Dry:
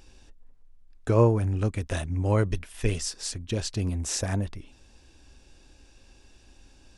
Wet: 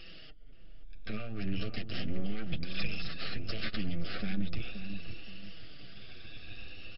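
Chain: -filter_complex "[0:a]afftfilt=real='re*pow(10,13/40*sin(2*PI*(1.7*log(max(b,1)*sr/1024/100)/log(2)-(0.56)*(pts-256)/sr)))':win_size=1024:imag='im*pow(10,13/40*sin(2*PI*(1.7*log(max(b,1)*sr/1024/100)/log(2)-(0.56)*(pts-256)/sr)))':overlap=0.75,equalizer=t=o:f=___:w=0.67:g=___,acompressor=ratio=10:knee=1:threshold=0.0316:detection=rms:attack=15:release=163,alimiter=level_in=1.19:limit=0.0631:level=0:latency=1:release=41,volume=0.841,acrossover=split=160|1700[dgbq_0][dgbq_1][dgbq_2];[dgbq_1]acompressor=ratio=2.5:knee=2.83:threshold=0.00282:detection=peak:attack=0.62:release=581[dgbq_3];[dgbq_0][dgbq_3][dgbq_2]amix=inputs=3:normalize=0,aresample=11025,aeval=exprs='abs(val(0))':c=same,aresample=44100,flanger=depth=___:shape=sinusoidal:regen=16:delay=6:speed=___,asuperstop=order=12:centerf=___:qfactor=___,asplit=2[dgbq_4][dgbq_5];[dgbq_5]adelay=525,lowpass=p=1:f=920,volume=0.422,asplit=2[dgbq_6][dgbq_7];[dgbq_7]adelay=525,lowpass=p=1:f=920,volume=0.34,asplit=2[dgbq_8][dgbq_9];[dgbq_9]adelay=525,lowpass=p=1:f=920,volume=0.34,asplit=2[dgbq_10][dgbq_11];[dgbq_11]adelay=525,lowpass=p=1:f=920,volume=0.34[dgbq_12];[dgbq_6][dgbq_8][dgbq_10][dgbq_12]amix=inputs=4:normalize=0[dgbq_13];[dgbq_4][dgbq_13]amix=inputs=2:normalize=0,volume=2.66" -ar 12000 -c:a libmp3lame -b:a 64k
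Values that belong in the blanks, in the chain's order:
2.9k, 12, 4, 0.37, 940, 2.7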